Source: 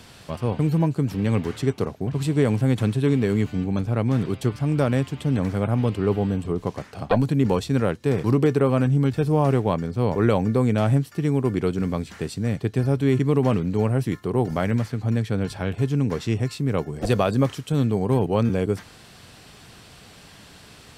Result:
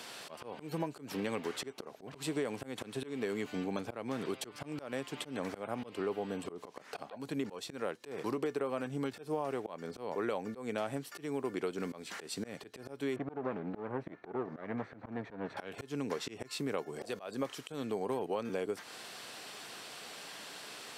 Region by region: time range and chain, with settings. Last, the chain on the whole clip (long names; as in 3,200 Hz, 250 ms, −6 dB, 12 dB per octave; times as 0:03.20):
0:13.16–0:15.57: lower of the sound and its delayed copy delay 0.49 ms + low-pass filter 1,500 Hz
whole clip: high-pass filter 390 Hz 12 dB per octave; downward compressor 6 to 1, threshold −34 dBFS; volume swells 146 ms; level +1.5 dB